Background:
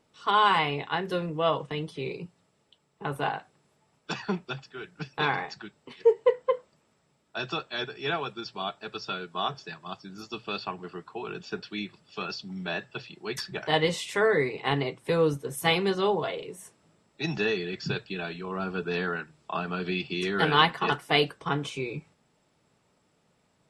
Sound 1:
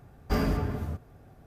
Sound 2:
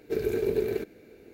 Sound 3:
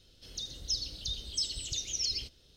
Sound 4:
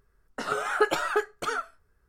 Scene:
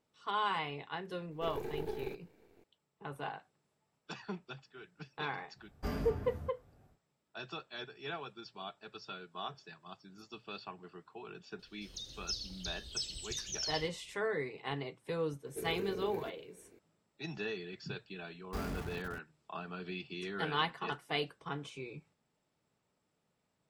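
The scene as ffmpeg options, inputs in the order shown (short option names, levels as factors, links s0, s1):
-filter_complex "[2:a]asplit=2[s0][s1];[1:a]asplit=2[s2][s3];[0:a]volume=0.251[s4];[s0]aeval=exprs='if(lt(val(0),0),0.251*val(0),val(0))':c=same[s5];[s1]alimiter=limit=0.0794:level=0:latency=1:release=51[s6];[s3]aeval=exprs='val(0)*gte(abs(val(0)),0.0335)':c=same[s7];[s5]atrim=end=1.33,asetpts=PTS-STARTPTS,volume=0.316,afade=t=in:d=0.004:c=hsin,afade=t=out:st=1.326:d=0.004:c=hsin,adelay=1310[s8];[s2]atrim=end=1.46,asetpts=PTS-STARTPTS,volume=0.282,afade=t=in:d=0.1,afade=t=out:st=1.36:d=0.1,adelay=243873S[s9];[3:a]atrim=end=2.56,asetpts=PTS-STARTPTS,volume=0.501,afade=t=in:d=0.004:c=hsin,afade=t=out:st=2.556:d=0.004:c=hsin,adelay=11590[s10];[s6]atrim=end=1.33,asetpts=PTS-STARTPTS,volume=0.299,afade=t=in:d=0.004:c=hsin,afade=t=out:st=1.326:d=0.004:c=hsin,adelay=15460[s11];[s7]atrim=end=1.46,asetpts=PTS-STARTPTS,volume=0.224,afade=t=in:d=0.004:c=hsin,afade=t=out:st=1.456:d=0.004:c=hsin,adelay=18230[s12];[s4][s8][s9][s10][s11][s12]amix=inputs=6:normalize=0"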